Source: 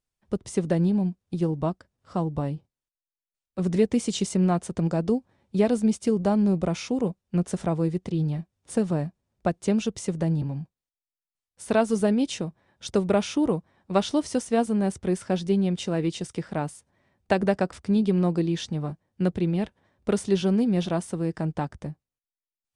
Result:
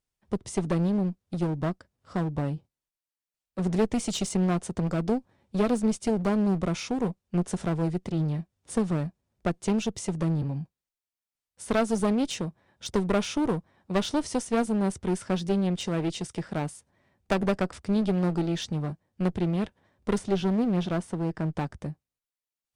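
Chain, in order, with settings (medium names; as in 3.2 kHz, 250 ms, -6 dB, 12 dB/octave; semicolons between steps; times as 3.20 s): 20.18–21.53 s: treble shelf 4.2 kHz -9.5 dB; one-sided clip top -28 dBFS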